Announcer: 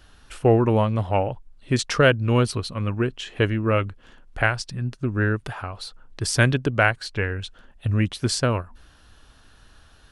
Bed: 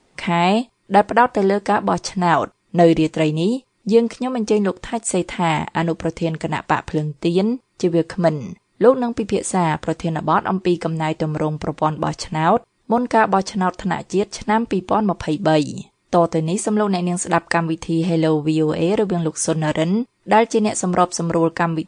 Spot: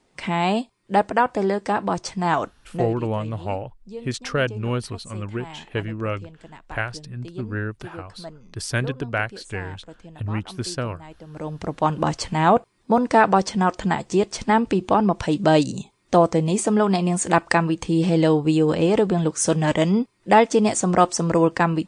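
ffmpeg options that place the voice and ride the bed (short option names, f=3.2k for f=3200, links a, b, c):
-filter_complex "[0:a]adelay=2350,volume=-5.5dB[a];[1:a]volume=16dB,afade=t=out:st=2.62:d=0.26:silence=0.149624,afade=t=in:st=11.26:d=0.71:silence=0.0891251[b];[a][b]amix=inputs=2:normalize=0"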